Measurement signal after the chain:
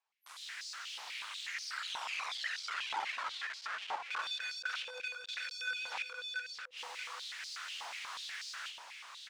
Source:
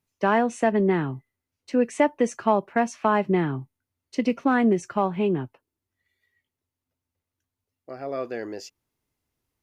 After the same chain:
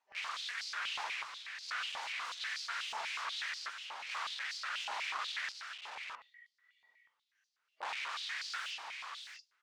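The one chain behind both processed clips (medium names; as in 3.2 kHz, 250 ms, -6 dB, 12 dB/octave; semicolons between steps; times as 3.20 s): phase randomisation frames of 200 ms; reverse; compression 16:1, threshold -36 dBFS; reverse; integer overflow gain 43.5 dB; distance through air 120 m; multi-tap echo 233/632 ms -18/-5.5 dB; step-sequenced high-pass 8.2 Hz 870–4700 Hz; trim +6.5 dB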